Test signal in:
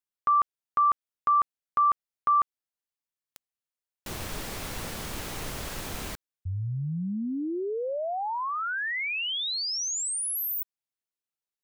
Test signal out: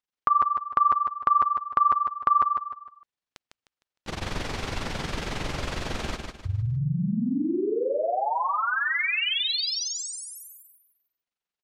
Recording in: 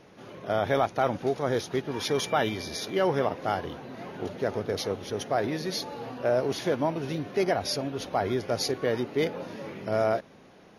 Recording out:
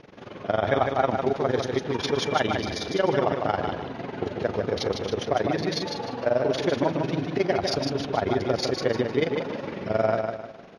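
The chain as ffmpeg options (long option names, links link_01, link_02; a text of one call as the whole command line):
ffmpeg -i in.wav -filter_complex "[0:a]lowpass=4800,asplit=2[link_01][link_02];[link_02]acompressor=threshold=-31dB:ratio=6:attack=28:release=58:knee=1:detection=rms,volume=-0.5dB[link_03];[link_01][link_03]amix=inputs=2:normalize=0,tremolo=f=22:d=0.889,aecho=1:1:153|306|459|612:0.562|0.197|0.0689|0.0241,volume=2dB" out.wav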